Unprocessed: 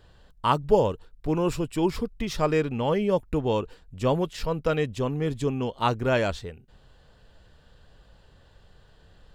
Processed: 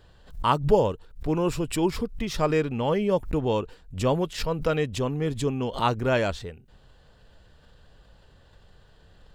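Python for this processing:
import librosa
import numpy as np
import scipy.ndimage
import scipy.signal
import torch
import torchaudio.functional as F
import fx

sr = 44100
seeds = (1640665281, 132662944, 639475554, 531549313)

y = fx.pre_swell(x, sr, db_per_s=140.0)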